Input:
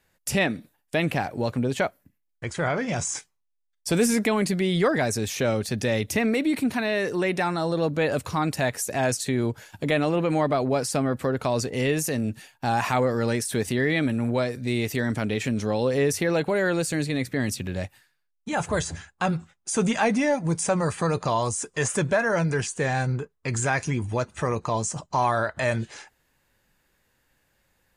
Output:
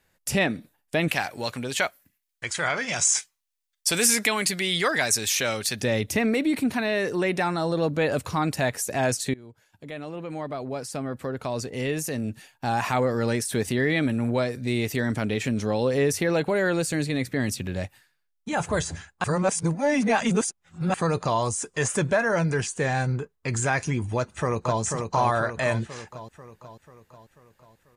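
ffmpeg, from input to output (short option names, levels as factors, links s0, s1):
-filter_complex "[0:a]asettb=1/sr,asplit=3[s0][s1][s2];[s0]atrim=end=1.084[s3];[s1]atrim=start=1.08:end=5.81,asetpts=PTS-STARTPTS,afade=t=in:d=0.004:c=qsin,afade=t=out:st=4.726:d=0.004:c=qsin,tiltshelf=f=970:g=-9[s4];[s2]atrim=start=5.806[s5];[s3][s4]acrossfade=d=0.004:c1=hsin:c2=qsin[s6];[s6][s5]acrossfade=d=0.004:c1=qsin:c2=hsin,asplit=2[s7][s8];[s8]afade=t=in:st=24.16:d=0.01,afade=t=out:st=24.81:d=0.01,aecho=0:1:490|980|1470|1960|2450|2940|3430:0.595662|0.327614|0.180188|0.0991033|0.0545068|0.0299787|0.0164883[s9];[s7][s9]amix=inputs=2:normalize=0,asplit=4[s10][s11][s12][s13];[s10]atrim=end=9.34,asetpts=PTS-STARTPTS,afade=t=out:st=9.336:d=0.004:c=hsin:silence=0.0668344[s14];[s11]atrim=start=9.34:end=19.242,asetpts=PTS-STARTPTS,afade=t=in:d=4.05:silence=0.0668344[s15];[s12]atrim=start=19.238:end=20.942,asetpts=PTS-STARTPTS,areverse[s16];[s13]atrim=start=20.938[s17];[s14][s15]concat=n=2:v=0:a=1[s18];[s18][s16]acrossfade=d=0.004:c1=hsin:c2=hsin[s19];[s19][s17]acrossfade=d=0.004:c1=hsin:c2=hsin"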